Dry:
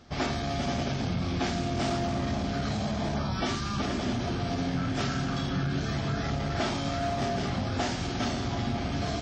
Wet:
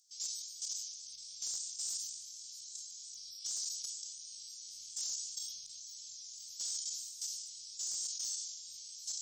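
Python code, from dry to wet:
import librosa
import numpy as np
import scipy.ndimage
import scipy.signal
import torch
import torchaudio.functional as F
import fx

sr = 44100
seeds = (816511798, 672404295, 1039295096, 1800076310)

y = fx.octave_divider(x, sr, octaves=2, level_db=3.0)
y = scipy.signal.sosfilt(scipy.signal.cheby2(4, 70, 1700.0, 'highpass', fs=sr, output='sos'), y)
y = fx.level_steps(y, sr, step_db=11)
y = fx.clip_asym(y, sr, top_db=-48.0, bottom_db=-44.5)
y = fx.sustainer(y, sr, db_per_s=40.0)
y = y * librosa.db_to_amplitude(16.5)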